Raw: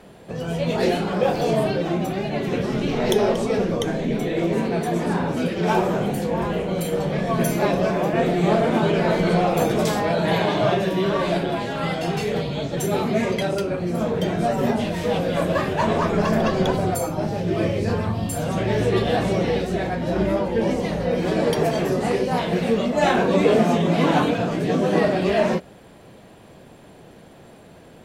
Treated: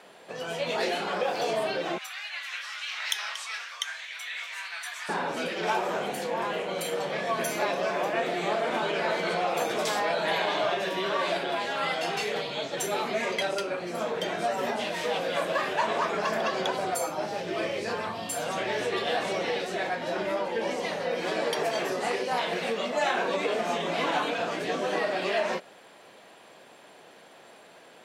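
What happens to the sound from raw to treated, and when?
1.98–5.09 HPF 1300 Hz 24 dB/oct
whole clip: low shelf 370 Hz -6.5 dB; compressor, threshold -21 dBFS; weighting filter A

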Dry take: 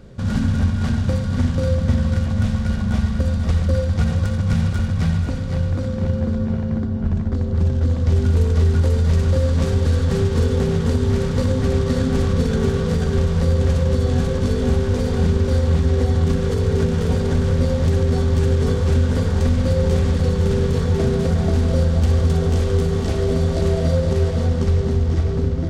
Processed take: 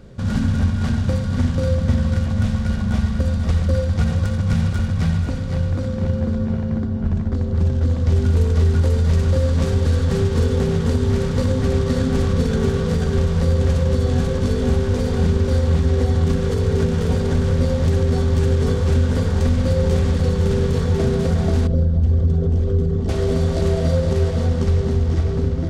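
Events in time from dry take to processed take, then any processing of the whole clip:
21.67–23.09 formant sharpening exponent 1.5

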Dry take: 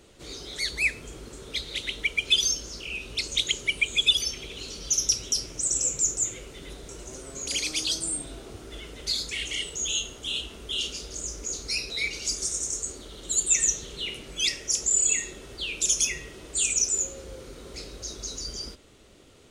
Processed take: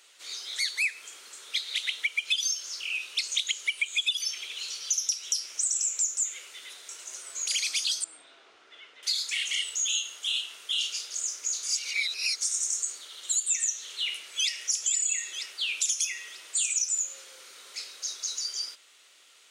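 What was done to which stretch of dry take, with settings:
8.04–9.03 tape spacing loss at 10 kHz 29 dB
11.63–12.41 reverse
13.86–14.58 echo throw 0.47 s, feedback 50%, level -8.5 dB
whole clip: HPF 1500 Hz 12 dB/oct; compressor 6:1, threshold -28 dBFS; gain +3.5 dB

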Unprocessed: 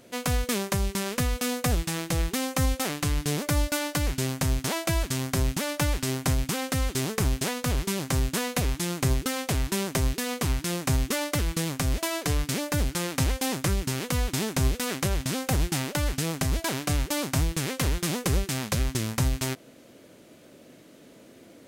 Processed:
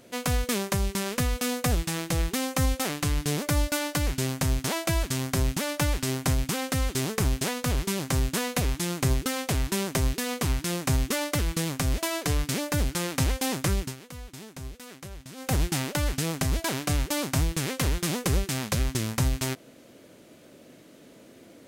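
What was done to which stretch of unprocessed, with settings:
13.79–15.53 dip -15 dB, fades 0.17 s

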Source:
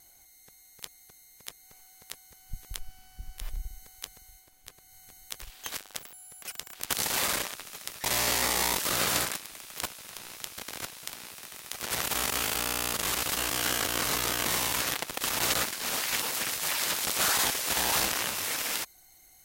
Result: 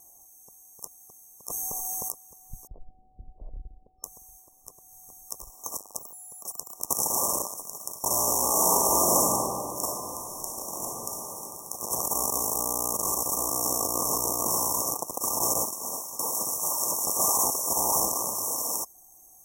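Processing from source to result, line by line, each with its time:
1.48–2.11 fast leveller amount 100%
2.67–4.04 steep low-pass 690 Hz
6.35–6.83 echo throw 0.55 s, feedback 75%, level -2 dB
8.48–11.42 reverb throw, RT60 2.6 s, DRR -4.5 dB
15.66–16.19 fade out, to -13.5 dB
whole clip: FFT band-reject 1200–5400 Hz; low shelf 180 Hz -9 dB; gain +4.5 dB

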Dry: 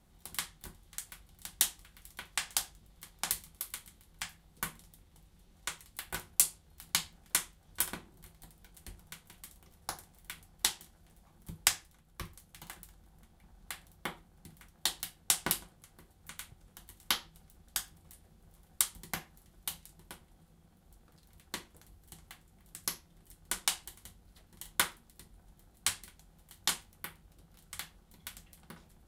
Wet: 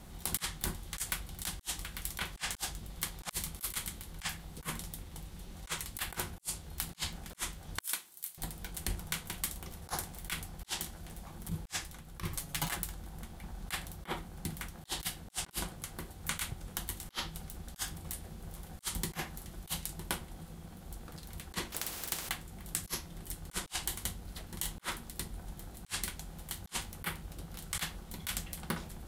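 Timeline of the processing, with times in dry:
7.81–8.38 differentiator
12.31–12.76 comb 7.2 ms, depth 87%
21.72–22.29 spectral compressor 4:1
whole clip: negative-ratio compressor -46 dBFS, ratio -0.5; gain +7.5 dB

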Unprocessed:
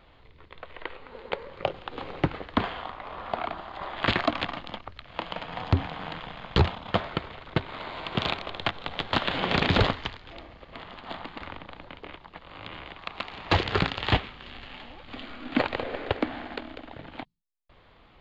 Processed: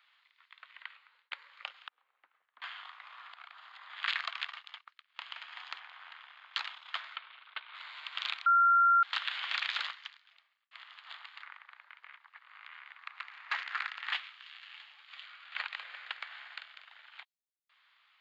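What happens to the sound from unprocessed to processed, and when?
0.63–1.31 fade out equal-power
1.88–2.62 band-pass 200 Hz, Q 2.4
3.26–3.9 compressor 4:1, threshold -36 dBFS
4.52–5.22 expander -38 dBFS
5.79–6.54 high shelf 2600 Hz -11 dB
7.16–7.75 speaker cabinet 210–3700 Hz, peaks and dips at 240 Hz +10 dB, 370 Hz +8 dB, 1900 Hz -5 dB
8.46–9.03 bleep 1380 Hz -13.5 dBFS
9.53–10.71 fade out
11.42–14.13 resonant high shelf 2500 Hz -7 dB, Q 1.5
15.26–15.73 high shelf 6200 Hz -6 dB
16.27–17.21 doubler 43 ms -7 dB
whole clip: HPF 1300 Hz 24 dB/oct; gain -5 dB

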